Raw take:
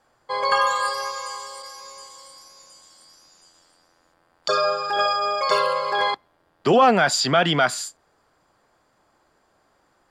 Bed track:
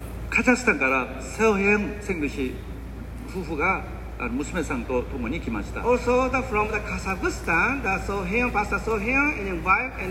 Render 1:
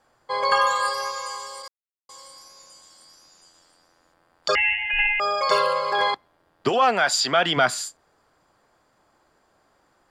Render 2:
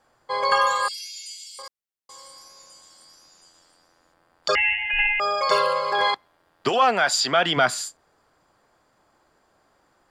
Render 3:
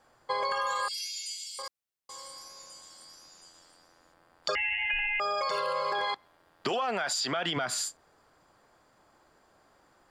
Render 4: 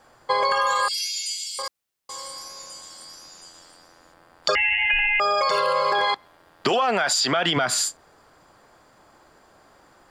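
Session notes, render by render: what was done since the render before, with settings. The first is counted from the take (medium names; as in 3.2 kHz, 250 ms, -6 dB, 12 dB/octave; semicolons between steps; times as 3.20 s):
1.68–2.09 s: mute; 4.55–5.20 s: frequency inversion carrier 3.3 kHz; 6.68–7.56 s: high-pass 990 Hz -> 410 Hz 6 dB/octave
0.88–1.59 s: steep high-pass 2.3 kHz 72 dB/octave; 6.04–6.83 s: tilt shelf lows -3 dB, about 690 Hz
peak limiter -17 dBFS, peak gain reduction 10 dB; compression, threshold -27 dBFS, peak gain reduction 6.5 dB
trim +9 dB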